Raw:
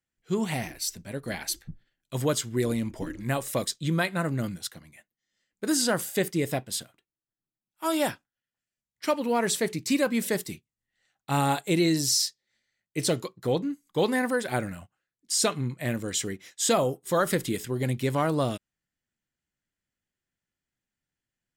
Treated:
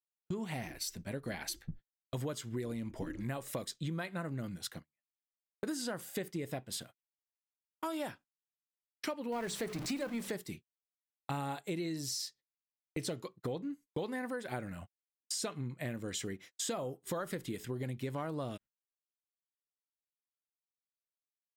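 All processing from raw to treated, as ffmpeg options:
-filter_complex "[0:a]asettb=1/sr,asplit=3[a][b][c];[a]atrim=end=9.324[d];[b]atrim=start=9.32:end=10.32,asetpts=PTS-STARTPTS,afade=t=in:d=0.004:c=qsin,afade=t=out:st=0.996:d=0.004:c=qsin,aeval=exprs='val(0)+0.5*0.0376*sgn(val(0))':c=same,acrossover=split=9700[e][f];[f]acompressor=threshold=-38dB:ratio=4:attack=1:release=60[g];[e][g]amix=inputs=2:normalize=0,bandreject=f=50:t=h:w=6,bandreject=f=100:t=h:w=6,bandreject=f=150:t=h:w=6,bandreject=f=200:t=h:w=6,bandreject=f=250:t=h:w=6,bandreject=f=300:t=h:w=6[h];[c]atrim=start=10.316[i];[d][h]acrossfade=d=0.004:c1=hsin:c2=qsin[j];[j][i]acrossfade=d=0.004:c1=qsin:c2=hsin,agate=range=-43dB:threshold=-44dB:ratio=16:detection=peak,equalizer=f=9.3k:w=0.41:g=-5.5,acompressor=threshold=-37dB:ratio=6,volume=1dB"

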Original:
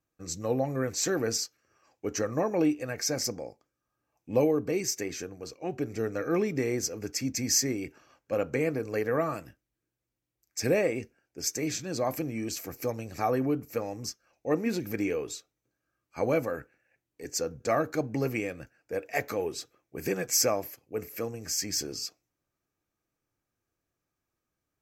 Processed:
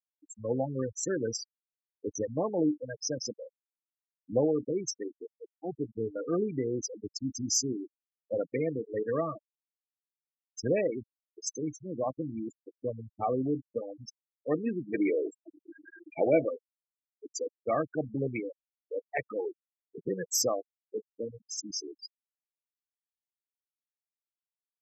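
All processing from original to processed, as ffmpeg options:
-filter_complex "[0:a]asettb=1/sr,asplit=3[a][b][c];[a]atrim=end=14.884[d];[b]atrim=start=14.88:end=16.49,asetpts=PTS-STARTPTS,afade=t=in:d=0.004:c=qsin,afade=t=out:st=1.606:d=0.004:c=qsin,aeval=exprs='val(0)+0.5*0.0251*sgn(val(0))':c=same,highpass=130,equalizer=f=230:t=q:w=4:g=-5,equalizer=f=340:t=q:w=4:g=6,equalizer=f=640:t=q:w=4:g=7,equalizer=f=1.1k:t=q:w=4:g=-9,equalizer=f=1.9k:t=q:w=4:g=7,equalizer=f=4.2k:t=q:w=4:g=-7,lowpass=f=6.2k:w=0.5412,lowpass=f=6.2k:w=1.3066,acrusher=bits=6:mix=0:aa=0.5[e];[c]atrim=start=16.486[f];[d][e]acrossfade=d=0.004:c1=hsin:c2=qsin[g];[g][f]acrossfade=d=0.004:c1=qsin:c2=hsin,afftfilt=real='re*gte(hypot(re,im),0.0708)':imag='im*gte(hypot(re,im),0.0708)':win_size=1024:overlap=0.75,highpass=f=86:w=0.5412,highpass=f=86:w=1.3066,afftfilt=real='re*gte(hypot(re,im),0.0398)':imag='im*gte(hypot(re,im),0.0398)':win_size=1024:overlap=0.75,volume=-2dB"

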